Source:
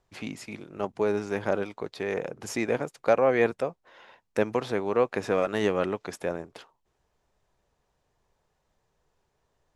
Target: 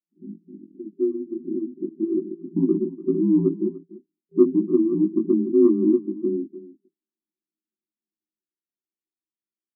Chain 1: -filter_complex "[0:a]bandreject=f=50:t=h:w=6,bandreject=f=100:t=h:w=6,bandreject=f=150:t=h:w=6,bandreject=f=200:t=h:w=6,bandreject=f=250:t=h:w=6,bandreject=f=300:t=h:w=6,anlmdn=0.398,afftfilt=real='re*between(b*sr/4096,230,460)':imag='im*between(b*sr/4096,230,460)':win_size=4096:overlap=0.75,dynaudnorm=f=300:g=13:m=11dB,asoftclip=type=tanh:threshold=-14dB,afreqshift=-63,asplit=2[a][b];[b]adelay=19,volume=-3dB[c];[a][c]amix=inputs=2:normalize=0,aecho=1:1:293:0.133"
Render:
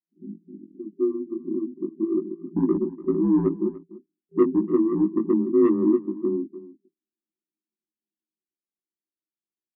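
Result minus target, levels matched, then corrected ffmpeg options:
soft clip: distortion +14 dB
-filter_complex "[0:a]bandreject=f=50:t=h:w=6,bandreject=f=100:t=h:w=6,bandreject=f=150:t=h:w=6,bandreject=f=200:t=h:w=6,bandreject=f=250:t=h:w=6,bandreject=f=300:t=h:w=6,anlmdn=0.398,afftfilt=real='re*between(b*sr/4096,230,460)':imag='im*between(b*sr/4096,230,460)':win_size=4096:overlap=0.75,dynaudnorm=f=300:g=13:m=11dB,asoftclip=type=tanh:threshold=-4.5dB,afreqshift=-63,asplit=2[a][b];[b]adelay=19,volume=-3dB[c];[a][c]amix=inputs=2:normalize=0,aecho=1:1:293:0.133"

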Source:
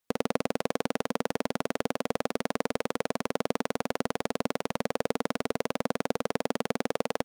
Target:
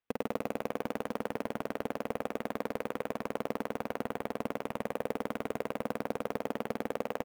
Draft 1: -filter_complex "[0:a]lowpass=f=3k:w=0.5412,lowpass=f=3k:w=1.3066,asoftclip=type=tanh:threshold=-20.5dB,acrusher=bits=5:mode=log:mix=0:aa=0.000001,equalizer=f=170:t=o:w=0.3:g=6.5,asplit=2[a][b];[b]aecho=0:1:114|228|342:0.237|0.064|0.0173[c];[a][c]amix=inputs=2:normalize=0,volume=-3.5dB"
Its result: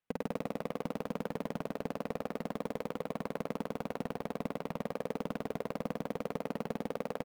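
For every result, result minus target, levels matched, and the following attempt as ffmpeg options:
soft clip: distortion +9 dB; 125 Hz band +5.0 dB
-filter_complex "[0:a]lowpass=f=3k:w=0.5412,lowpass=f=3k:w=1.3066,asoftclip=type=tanh:threshold=-13dB,acrusher=bits=5:mode=log:mix=0:aa=0.000001,equalizer=f=170:t=o:w=0.3:g=6.5,asplit=2[a][b];[b]aecho=0:1:114|228|342:0.237|0.064|0.0173[c];[a][c]amix=inputs=2:normalize=0,volume=-3.5dB"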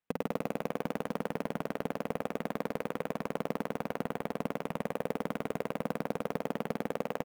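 125 Hz band +4.0 dB
-filter_complex "[0:a]lowpass=f=3k:w=0.5412,lowpass=f=3k:w=1.3066,asoftclip=type=tanh:threshold=-13dB,acrusher=bits=5:mode=log:mix=0:aa=0.000001,equalizer=f=170:t=o:w=0.3:g=-5.5,asplit=2[a][b];[b]aecho=0:1:114|228|342:0.237|0.064|0.0173[c];[a][c]amix=inputs=2:normalize=0,volume=-3.5dB"

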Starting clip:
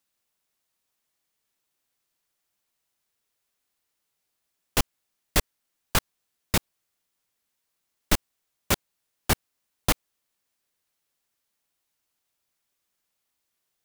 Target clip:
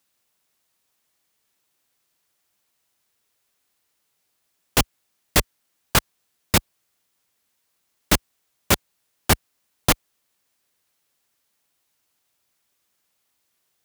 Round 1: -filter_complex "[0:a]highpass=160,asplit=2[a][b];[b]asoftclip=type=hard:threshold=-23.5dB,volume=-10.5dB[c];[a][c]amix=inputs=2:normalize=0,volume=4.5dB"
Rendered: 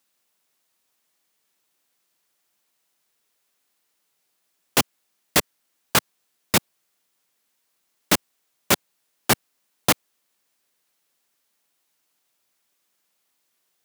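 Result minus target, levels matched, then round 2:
125 Hz band -5.5 dB
-filter_complex "[0:a]highpass=44,asplit=2[a][b];[b]asoftclip=type=hard:threshold=-23.5dB,volume=-10.5dB[c];[a][c]amix=inputs=2:normalize=0,volume=4.5dB"

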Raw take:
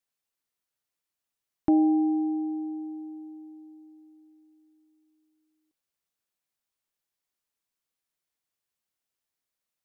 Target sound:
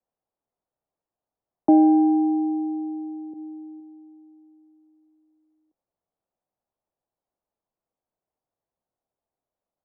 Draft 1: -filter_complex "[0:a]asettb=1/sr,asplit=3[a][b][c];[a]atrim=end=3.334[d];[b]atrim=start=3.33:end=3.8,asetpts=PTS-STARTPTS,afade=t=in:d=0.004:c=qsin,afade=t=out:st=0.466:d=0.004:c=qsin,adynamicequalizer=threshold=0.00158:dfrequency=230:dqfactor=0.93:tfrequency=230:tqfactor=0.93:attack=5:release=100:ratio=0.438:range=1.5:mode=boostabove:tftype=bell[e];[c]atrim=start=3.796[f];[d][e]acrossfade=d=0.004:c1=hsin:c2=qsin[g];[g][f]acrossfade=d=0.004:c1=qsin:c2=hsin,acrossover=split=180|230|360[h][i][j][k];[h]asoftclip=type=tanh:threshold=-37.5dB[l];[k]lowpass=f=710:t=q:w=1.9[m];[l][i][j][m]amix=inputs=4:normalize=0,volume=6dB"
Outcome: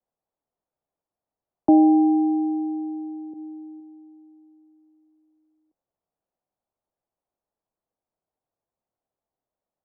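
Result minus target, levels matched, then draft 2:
soft clip: distortion -6 dB
-filter_complex "[0:a]asettb=1/sr,asplit=3[a][b][c];[a]atrim=end=3.334[d];[b]atrim=start=3.33:end=3.8,asetpts=PTS-STARTPTS,afade=t=in:d=0.004:c=qsin,afade=t=out:st=0.466:d=0.004:c=qsin,adynamicequalizer=threshold=0.00158:dfrequency=230:dqfactor=0.93:tfrequency=230:tqfactor=0.93:attack=5:release=100:ratio=0.438:range=1.5:mode=boostabove:tftype=bell[e];[c]atrim=start=3.796[f];[d][e]acrossfade=d=0.004:c1=hsin:c2=qsin[g];[g][f]acrossfade=d=0.004:c1=qsin:c2=hsin,acrossover=split=180|230|360[h][i][j][k];[h]asoftclip=type=tanh:threshold=-48dB[l];[k]lowpass=f=710:t=q:w=1.9[m];[l][i][j][m]amix=inputs=4:normalize=0,volume=6dB"

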